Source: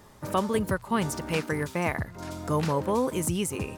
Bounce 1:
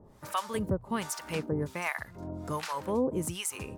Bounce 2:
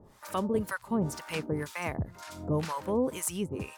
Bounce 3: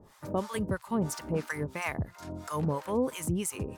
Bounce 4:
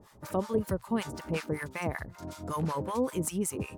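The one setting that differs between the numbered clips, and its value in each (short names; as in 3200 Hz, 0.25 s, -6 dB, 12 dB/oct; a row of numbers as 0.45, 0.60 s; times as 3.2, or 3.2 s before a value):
harmonic tremolo, rate: 1.3, 2, 3, 5.3 Hz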